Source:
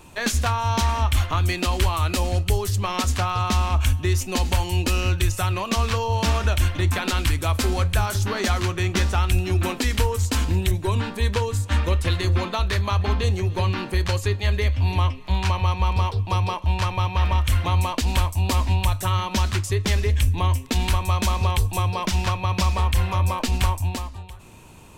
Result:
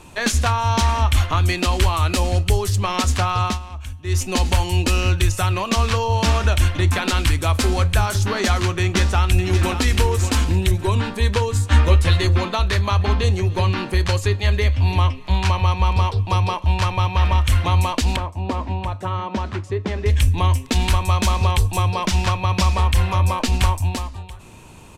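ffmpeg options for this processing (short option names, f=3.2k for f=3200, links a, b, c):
-filter_complex "[0:a]asplit=2[a][b];[b]afade=t=in:st=8.8:d=0.01,afade=t=out:st=9.78:d=0.01,aecho=0:1:580|1160|1740:0.354813|0.106444|0.0319332[c];[a][c]amix=inputs=2:normalize=0,asettb=1/sr,asplit=3[d][e][f];[d]atrim=end=11.544[g];[e]atrim=start=11.54:end=12.27,asetpts=PTS-STARTPTS,afade=t=in:d=0.004:c=qsin,afade=t=out:st=0.726:d=0.004:c=qsin,asplit=2[h][i];[i]adelay=13,volume=-4dB[j];[h][j]amix=inputs=2:normalize=0,atrim=end_sample=32193[k];[f]atrim=start=12.266[l];[g][k]acrossfade=d=0.004:c1=hsin:c2=qsin[m];[m][l]acrossfade=d=0.004:c1=qsin:c2=hsin,asettb=1/sr,asplit=3[n][o][p];[n]atrim=end=18.164[q];[o]atrim=start=18.16:end=20.06,asetpts=PTS-STARTPTS,afade=t=in:d=0.004:c=qsin,afade=t=out:st=1.896:d=0.004:c=qsin,bandpass=f=420:t=q:w=0.51[r];[p]atrim=start=20.056[s];[q][r]acrossfade=d=0.004:c1=hsin:c2=qsin[t];[t][s]acrossfade=d=0.004:c1=qsin:c2=hsin,asplit=3[u][v][w];[u]atrim=end=3.59,asetpts=PTS-STARTPTS,afade=t=out:st=3.46:d=0.13:silence=0.16788[x];[v]atrim=start=3.59:end=4.04,asetpts=PTS-STARTPTS,volume=-15.5dB[y];[w]atrim=start=4.04,asetpts=PTS-STARTPTS,afade=t=in:d=0.13:silence=0.16788[z];[x][y][z]concat=n=3:v=0:a=1,lowpass=12k,volume=3.5dB"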